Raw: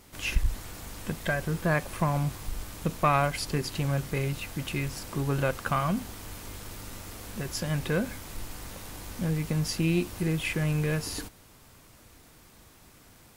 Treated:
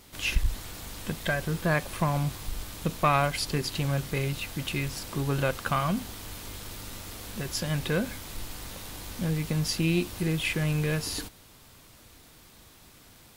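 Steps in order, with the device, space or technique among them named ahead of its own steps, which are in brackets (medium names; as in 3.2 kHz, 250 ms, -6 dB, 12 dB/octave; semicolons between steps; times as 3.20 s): presence and air boost (peaking EQ 3.7 kHz +5 dB 0.92 oct; treble shelf 11 kHz +3.5 dB)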